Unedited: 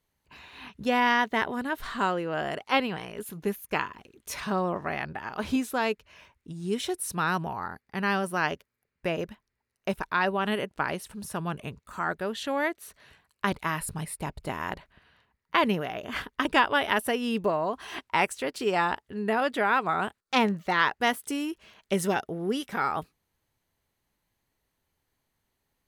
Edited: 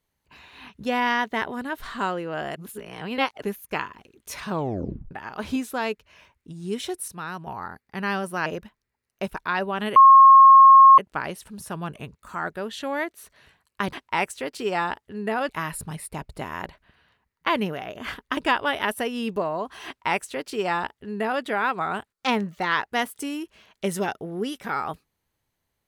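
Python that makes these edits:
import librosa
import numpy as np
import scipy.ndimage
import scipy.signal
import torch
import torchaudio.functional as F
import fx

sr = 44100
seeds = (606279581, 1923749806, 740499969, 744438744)

y = fx.edit(x, sr, fx.reverse_span(start_s=2.56, length_s=0.86),
    fx.tape_stop(start_s=4.49, length_s=0.62),
    fx.clip_gain(start_s=7.08, length_s=0.39, db=-7.0),
    fx.cut(start_s=8.46, length_s=0.66),
    fx.insert_tone(at_s=10.62, length_s=1.02, hz=1080.0, db=-7.0),
    fx.duplicate(start_s=17.94, length_s=1.56, to_s=13.57), tone=tone)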